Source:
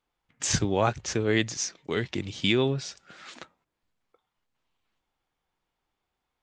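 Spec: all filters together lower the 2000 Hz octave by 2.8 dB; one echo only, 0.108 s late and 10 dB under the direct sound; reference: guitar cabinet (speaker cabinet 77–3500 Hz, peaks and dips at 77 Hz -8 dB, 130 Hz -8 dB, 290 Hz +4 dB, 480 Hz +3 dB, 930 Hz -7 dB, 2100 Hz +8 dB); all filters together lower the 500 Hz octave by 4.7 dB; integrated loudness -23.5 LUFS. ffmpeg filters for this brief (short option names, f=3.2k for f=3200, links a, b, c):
-af "highpass=77,equalizer=f=77:t=q:w=4:g=-8,equalizer=f=130:t=q:w=4:g=-8,equalizer=f=290:t=q:w=4:g=4,equalizer=f=480:t=q:w=4:g=3,equalizer=f=930:t=q:w=4:g=-7,equalizer=f=2.1k:t=q:w=4:g=8,lowpass=f=3.5k:w=0.5412,lowpass=f=3.5k:w=1.3066,equalizer=f=500:t=o:g=-8,equalizer=f=2k:t=o:g=-8,aecho=1:1:108:0.316,volume=7.5dB"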